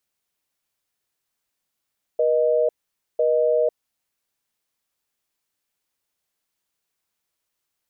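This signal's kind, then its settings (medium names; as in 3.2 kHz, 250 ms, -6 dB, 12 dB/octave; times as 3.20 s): call progress tone busy tone, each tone -19 dBFS 1.83 s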